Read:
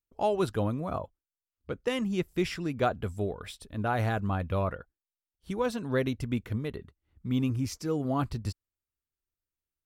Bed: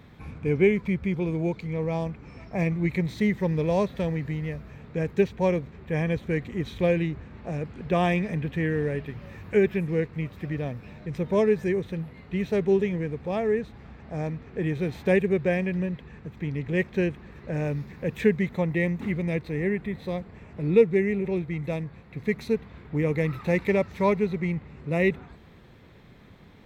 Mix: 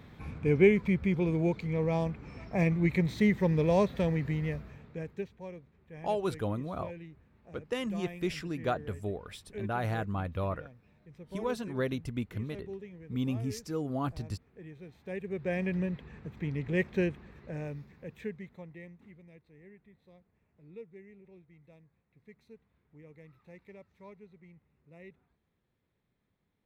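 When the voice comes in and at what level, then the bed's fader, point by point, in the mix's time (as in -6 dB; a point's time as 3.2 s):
5.85 s, -4.0 dB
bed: 4.55 s -1.5 dB
5.43 s -20.5 dB
15.02 s -20.5 dB
15.67 s -4 dB
17.02 s -4 dB
19.32 s -28.5 dB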